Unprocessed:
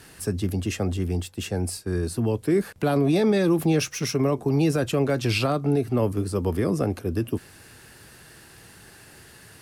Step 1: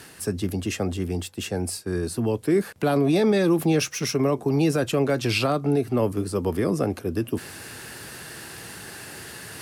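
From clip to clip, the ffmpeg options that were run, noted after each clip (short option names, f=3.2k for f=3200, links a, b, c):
-af "highpass=f=140:p=1,areverse,acompressor=mode=upward:threshold=-31dB:ratio=2.5,areverse,volume=1.5dB"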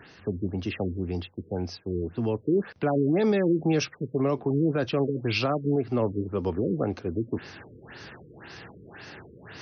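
-af "afftfilt=real='re*lt(b*sr/1024,490*pow(6500/490,0.5+0.5*sin(2*PI*1.9*pts/sr)))':imag='im*lt(b*sr/1024,490*pow(6500/490,0.5+0.5*sin(2*PI*1.9*pts/sr)))':win_size=1024:overlap=0.75,volume=-3dB"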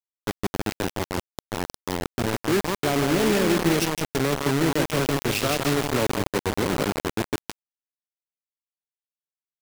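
-filter_complex "[0:a]asplit=2[a][b];[b]aecho=0:1:160|320|480|640|800|960:0.531|0.26|0.127|0.0625|0.0306|0.015[c];[a][c]amix=inputs=2:normalize=0,acrusher=bits=3:mix=0:aa=0.000001"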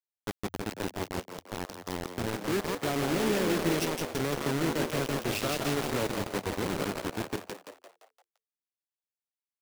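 -filter_complex "[0:a]asplit=6[a][b][c][d][e][f];[b]adelay=172,afreqshift=87,volume=-8.5dB[g];[c]adelay=344,afreqshift=174,volume=-14.9dB[h];[d]adelay=516,afreqshift=261,volume=-21.3dB[i];[e]adelay=688,afreqshift=348,volume=-27.6dB[j];[f]adelay=860,afreqshift=435,volume=-34dB[k];[a][g][h][i][j][k]amix=inputs=6:normalize=0,volume=-7.5dB"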